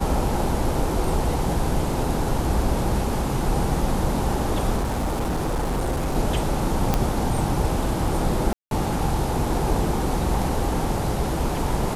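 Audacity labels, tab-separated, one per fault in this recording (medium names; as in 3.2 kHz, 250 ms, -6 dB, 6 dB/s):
4.770000	6.150000	clipped -20.5 dBFS
6.940000	6.940000	pop -6 dBFS
8.530000	8.710000	dropout 182 ms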